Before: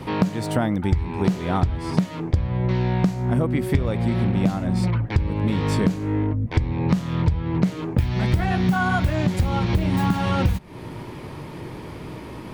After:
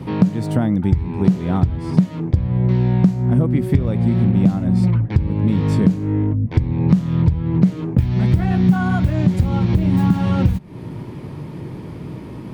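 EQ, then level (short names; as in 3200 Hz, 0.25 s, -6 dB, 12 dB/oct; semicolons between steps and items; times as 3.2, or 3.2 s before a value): bell 160 Hz +11.5 dB 2.6 oct; -4.5 dB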